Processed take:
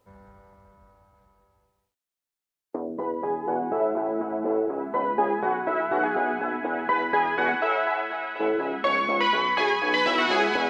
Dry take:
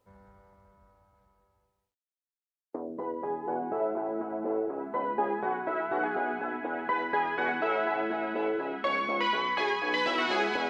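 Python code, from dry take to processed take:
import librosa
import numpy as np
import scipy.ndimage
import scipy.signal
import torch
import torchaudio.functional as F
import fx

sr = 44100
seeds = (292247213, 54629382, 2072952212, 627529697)

y = fx.highpass(x, sr, hz=fx.line((7.55, 420.0), (8.39, 1100.0)), slope=12, at=(7.55, 8.39), fade=0.02)
y = F.gain(torch.from_numpy(y), 5.5).numpy()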